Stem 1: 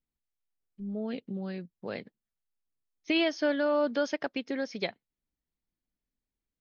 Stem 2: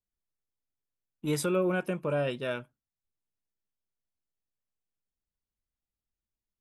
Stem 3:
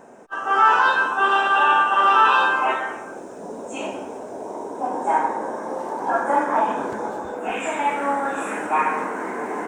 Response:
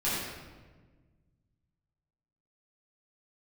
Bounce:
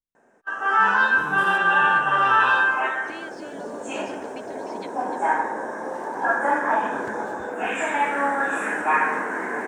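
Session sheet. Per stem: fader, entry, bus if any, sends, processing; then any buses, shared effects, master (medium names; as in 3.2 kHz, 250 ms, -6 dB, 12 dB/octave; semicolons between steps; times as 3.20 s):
-2.0 dB, 0.00 s, no send, echo send -11 dB, compression, threshold -35 dBFS, peak gain reduction 12 dB
-0.5 dB, 0.00 s, no send, no echo send, spectrogram pixelated in time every 200 ms; peak limiter -29.5 dBFS, peak gain reduction 9 dB
-5.5 dB, 0.15 s, no send, no echo send, high-pass 52 Hz; peaking EQ 1.7 kHz +10.5 dB 0.39 oct; level rider gain up to 4.5 dB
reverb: none
echo: delay 301 ms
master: gate -41 dBFS, range -9 dB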